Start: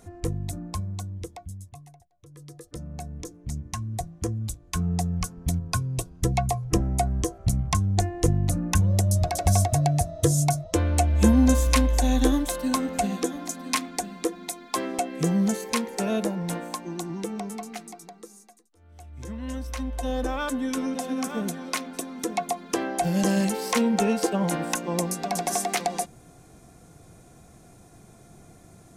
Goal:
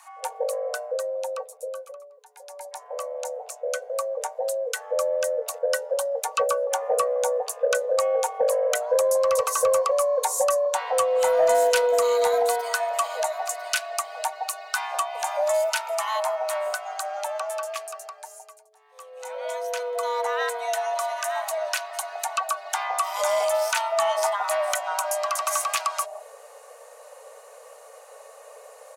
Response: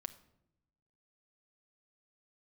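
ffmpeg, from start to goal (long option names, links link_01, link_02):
-filter_complex "[0:a]acrossover=split=330[link_01][link_02];[link_01]adelay=160[link_03];[link_03][link_02]amix=inputs=2:normalize=0,asplit=2[link_04][link_05];[link_05]acompressor=threshold=-32dB:ratio=6,volume=1dB[link_06];[link_04][link_06]amix=inputs=2:normalize=0,afreqshift=430,acontrast=52,volume=-7.5dB"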